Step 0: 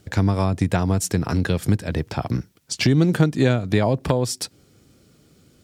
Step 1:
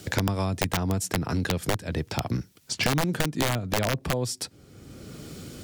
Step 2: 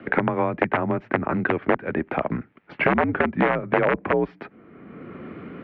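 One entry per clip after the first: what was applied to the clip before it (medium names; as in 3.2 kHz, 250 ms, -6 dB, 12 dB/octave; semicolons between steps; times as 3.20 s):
integer overflow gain 9.5 dB; three bands compressed up and down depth 70%; trim -6.5 dB
mistuned SSB -74 Hz 260–2300 Hz; trim +8.5 dB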